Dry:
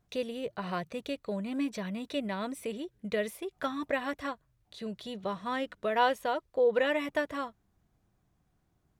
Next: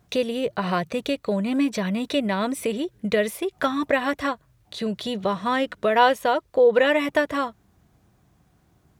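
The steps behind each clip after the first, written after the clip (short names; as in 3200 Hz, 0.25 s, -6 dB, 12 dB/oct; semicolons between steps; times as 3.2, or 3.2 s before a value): HPF 52 Hz; in parallel at -1 dB: compressor, threshold -38 dBFS, peak gain reduction 16.5 dB; on the sum: gain +7.5 dB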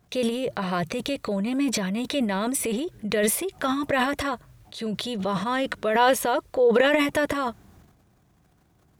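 dynamic EQ 9900 Hz, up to +5 dB, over -50 dBFS, Q 0.9; transient shaper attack -2 dB, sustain +11 dB; gain -2.5 dB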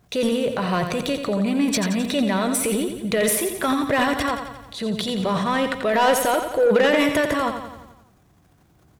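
soft clip -16 dBFS, distortion -16 dB; on a send: feedback echo 87 ms, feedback 56%, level -8 dB; on the sum: gain +4 dB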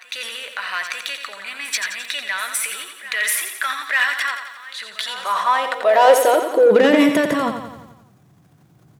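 reverse echo 0.895 s -17 dB; high-pass sweep 1700 Hz -> 130 Hz, 4.88–7.64; gain +1 dB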